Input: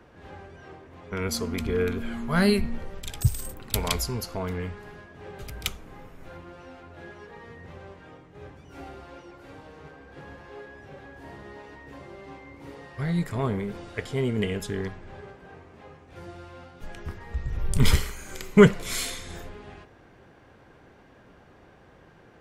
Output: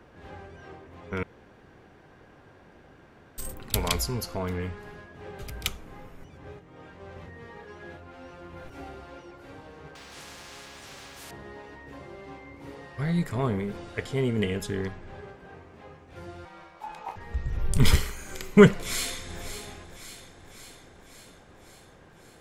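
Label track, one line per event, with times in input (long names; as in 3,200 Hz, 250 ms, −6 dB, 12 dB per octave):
1.230000	3.380000	fill with room tone
6.240000	8.700000	reverse
9.950000	11.310000	every bin compressed towards the loudest bin 4 to 1
16.450000	17.160000	ring modulation 860 Hz
18.780000	19.410000	delay throw 550 ms, feedback 65%, level −10.5 dB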